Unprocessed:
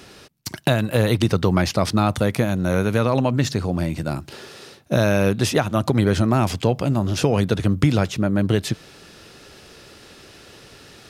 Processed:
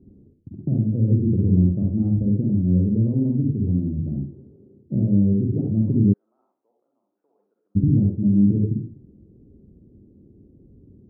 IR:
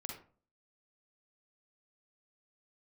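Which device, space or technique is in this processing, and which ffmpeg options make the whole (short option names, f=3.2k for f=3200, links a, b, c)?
next room: -filter_complex "[0:a]lowpass=f=310:w=0.5412,lowpass=f=310:w=1.3066[a];[1:a]atrim=start_sample=2205[b];[a][b]afir=irnorm=-1:irlink=0,asplit=3[c][d][e];[c]afade=t=out:st=6.12:d=0.02[f];[d]highpass=f=1.2k:w=0.5412,highpass=f=1.2k:w=1.3066,afade=t=in:st=6.12:d=0.02,afade=t=out:st=7.75:d=0.02[g];[e]afade=t=in:st=7.75:d=0.02[h];[f][g][h]amix=inputs=3:normalize=0,volume=2.5dB"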